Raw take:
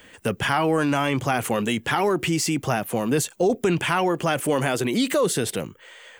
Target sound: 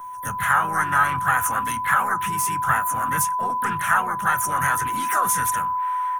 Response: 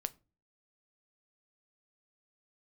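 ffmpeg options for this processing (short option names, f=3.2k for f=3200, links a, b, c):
-filter_complex "[0:a]firequalizer=gain_entry='entry(140,0);entry(260,-13);entry(450,-16);entry(1300,5);entry(1900,-11);entry(3400,-11);entry(5300,-26);entry(9200,14);entry(14000,9)':delay=0.05:min_phase=1,asplit=4[a][b][c][d];[b]asetrate=29433,aresample=44100,atempo=1.49831,volume=-7dB[e];[c]asetrate=52444,aresample=44100,atempo=0.840896,volume=-8dB[f];[d]asetrate=55563,aresample=44100,atempo=0.793701,volume=-7dB[g];[a][e][f][g]amix=inputs=4:normalize=0,aeval=exprs='val(0)+0.0398*sin(2*PI*1000*n/s)':c=same,acrossover=split=180|1000|2500[h][i][j][k];[j]dynaudnorm=f=200:g=3:m=16.5dB[l];[h][i][l][k]amix=inputs=4:normalize=0[m];[1:a]atrim=start_sample=2205,asetrate=79380,aresample=44100[n];[m][n]afir=irnorm=-1:irlink=0"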